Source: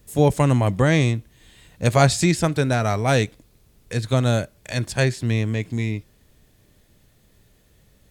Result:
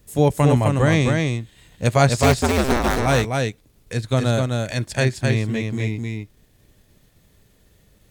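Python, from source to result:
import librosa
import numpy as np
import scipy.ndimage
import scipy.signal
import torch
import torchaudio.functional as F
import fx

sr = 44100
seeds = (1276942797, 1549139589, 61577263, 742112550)

y = fx.cycle_switch(x, sr, every=2, mode='inverted', at=(2.12, 2.99))
y = fx.transient(y, sr, attack_db=0, sustain_db=-5)
y = y + 10.0 ** (-3.5 / 20.0) * np.pad(y, (int(259 * sr / 1000.0), 0))[:len(y)]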